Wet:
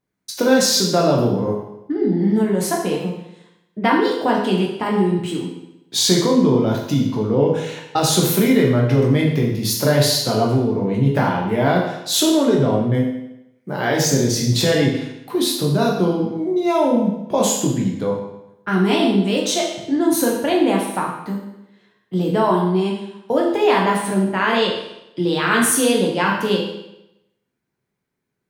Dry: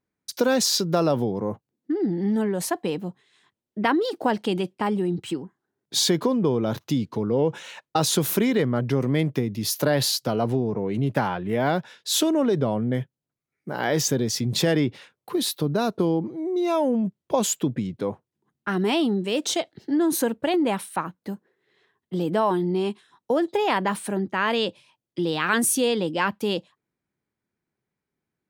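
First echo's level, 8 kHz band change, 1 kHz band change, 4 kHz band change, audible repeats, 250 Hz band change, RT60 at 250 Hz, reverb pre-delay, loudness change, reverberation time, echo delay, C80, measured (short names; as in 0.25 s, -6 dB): none, +5.5 dB, +5.5 dB, +5.5 dB, none, +6.0 dB, 0.85 s, 12 ms, +6.0 dB, 0.85 s, none, 6.0 dB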